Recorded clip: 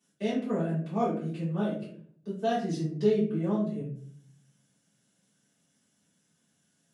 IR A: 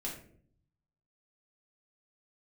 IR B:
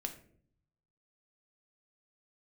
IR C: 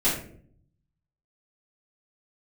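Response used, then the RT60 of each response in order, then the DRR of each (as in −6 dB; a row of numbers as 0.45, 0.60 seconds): C; 0.55, 0.55, 0.55 seconds; −5.0, 4.5, −14.0 decibels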